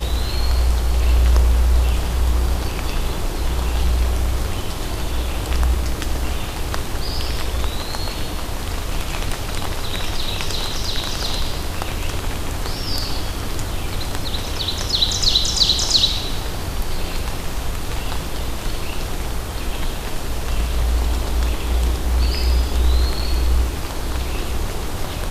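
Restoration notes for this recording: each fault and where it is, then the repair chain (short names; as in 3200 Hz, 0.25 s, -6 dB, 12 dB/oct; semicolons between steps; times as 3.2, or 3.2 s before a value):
23.19–23.2 gap 5.4 ms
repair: interpolate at 23.19, 5.4 ms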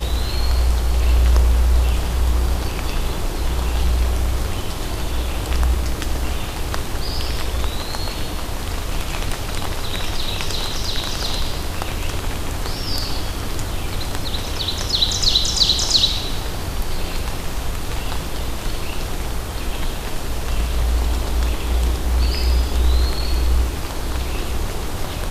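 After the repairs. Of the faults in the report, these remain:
none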